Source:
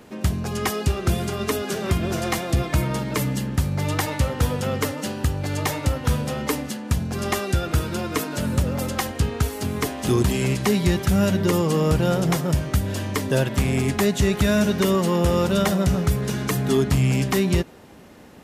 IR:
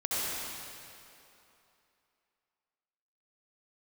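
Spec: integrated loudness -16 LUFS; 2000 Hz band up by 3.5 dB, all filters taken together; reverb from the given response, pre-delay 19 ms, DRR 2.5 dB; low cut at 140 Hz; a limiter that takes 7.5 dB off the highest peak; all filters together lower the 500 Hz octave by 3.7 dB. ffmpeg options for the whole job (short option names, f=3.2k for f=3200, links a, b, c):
-filter_complex "[0:a]highpass=140,equalizer=f=500:t=o:g=-5,equalizer=f=2k:t=o:g=4.5,alimiter=limit=-15dB:level=0:latency=1,asplit=2[a][b];[1:a]atrim=start_sample=2205,adelay=19[c];[b][c]afir=irnorm=-1:irlink=0,volume=-11.5dB[d];[a][d]amix=inputs=2:normalize=0,volume=9dB"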